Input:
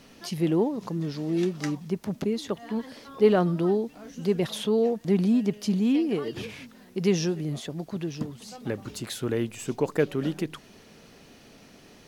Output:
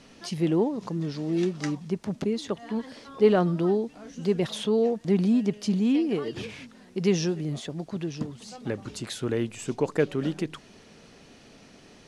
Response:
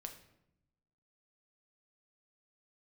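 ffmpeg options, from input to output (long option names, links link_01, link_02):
-af "lowpass=frequency=9800:width=0.5412,lowpass=frequency=9800:width=1.3066"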